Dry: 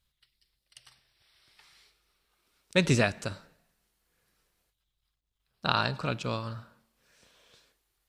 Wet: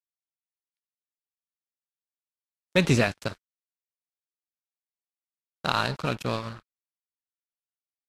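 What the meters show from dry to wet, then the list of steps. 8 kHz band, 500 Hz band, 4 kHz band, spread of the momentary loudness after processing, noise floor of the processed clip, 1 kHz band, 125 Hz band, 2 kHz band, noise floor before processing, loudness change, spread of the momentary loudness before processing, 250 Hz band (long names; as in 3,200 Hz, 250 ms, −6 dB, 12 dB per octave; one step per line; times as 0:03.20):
+1.0 dB, +3.0 dB, +1.0 dB, 14 LU, below −85 dBFS, +2.0 dB, +2.0 dB, +2.0 dB, −82 dBFS, +2.5 dB, 15 LU, +3.0 dB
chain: high-shelf EQ 6,900 Hz −8 dB
in parallel at +1 dB: brickwall limiter −20 dBFS, peak gain reduction 11.5 dB
on the sum: dead-zone distortion −33.5 dBFS
downward expander −50 dBFS
Ogg Vorbis 48 kbit/s 32,000 Hz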